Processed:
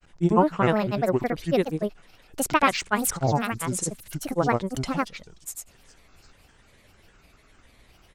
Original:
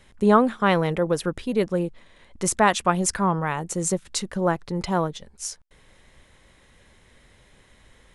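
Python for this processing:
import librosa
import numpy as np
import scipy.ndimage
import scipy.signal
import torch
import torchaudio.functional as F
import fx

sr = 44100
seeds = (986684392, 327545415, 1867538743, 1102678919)

y = fx.echo_wet_highpass(x, sr, ms=232, feedback_pct=56, hz=4700.0, wet_db=-16)
y = fx.granulator(y, sr, seeds[0], grain_ms=100.0, per_s=20.0, spray_ms=100.0, spread_st=7)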